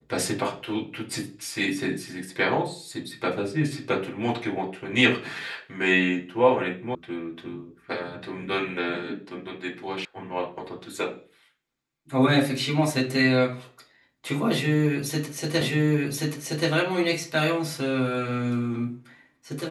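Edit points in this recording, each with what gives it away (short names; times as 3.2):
6.95 sound cut off
10.05 sound cut off
15.61 repeat of the last 1.08 s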